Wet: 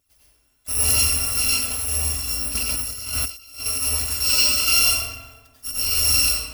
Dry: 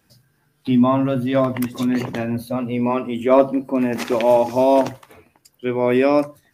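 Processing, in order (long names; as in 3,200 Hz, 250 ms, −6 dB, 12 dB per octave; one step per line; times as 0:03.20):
samples in bit-reversed order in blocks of 256 samples
feedback echo with a low-pass in the loop 90 ms, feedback 65%, low-pass 3,400 Hz, level −6 dB
flanger 0.99 Hz, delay 0.3 ms, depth 4.6 ms, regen +31%
dense smooth reverb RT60 0.76 s, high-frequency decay 0.75×, pre-delay 80 ms, DRR −5.5 dB
0:02.55–0:03.66: compressor whose output falls as the input rises −23 dBFS, ratio −0.5
level −4.5 dB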